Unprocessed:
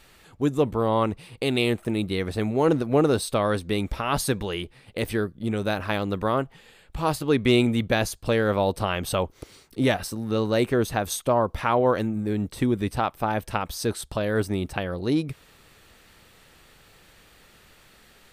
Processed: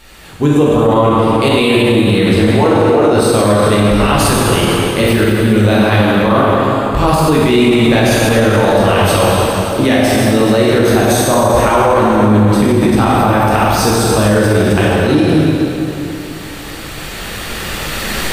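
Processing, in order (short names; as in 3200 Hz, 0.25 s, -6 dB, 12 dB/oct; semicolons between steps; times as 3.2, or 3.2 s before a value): recorder AGC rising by 6.5 dB/s; 2.52–3.12 tone controls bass -14 dB, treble -4 dB; reverb RT60 3.3 s, pre-delay 8 ms, DRR -7 dB; maximiser +10.5 dB; gain -1 dB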